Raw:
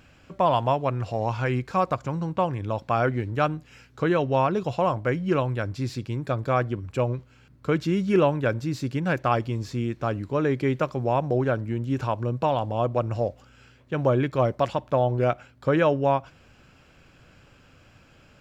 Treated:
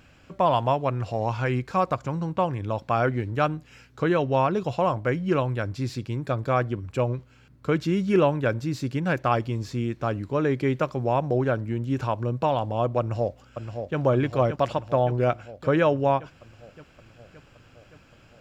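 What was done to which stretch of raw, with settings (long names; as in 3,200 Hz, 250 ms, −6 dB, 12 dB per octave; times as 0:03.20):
0:12.99–0:13.98: delay throw 570 ms, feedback 70%, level −7 dB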